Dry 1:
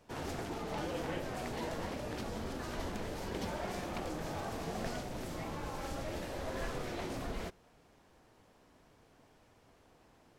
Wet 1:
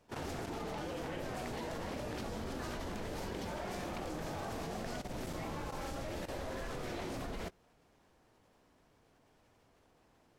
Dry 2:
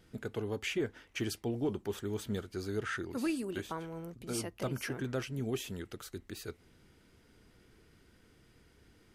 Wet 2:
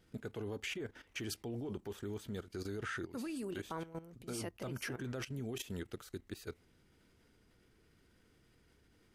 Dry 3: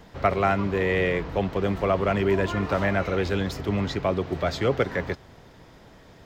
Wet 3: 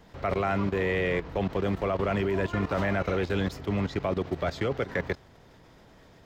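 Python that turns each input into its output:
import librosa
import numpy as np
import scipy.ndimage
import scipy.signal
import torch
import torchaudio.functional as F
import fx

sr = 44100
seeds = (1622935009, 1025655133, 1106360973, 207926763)

y = fx.level_steps(x, sr, step_db=14)
y = F.gain(torch.from_numpy(y), 1.5).numpy()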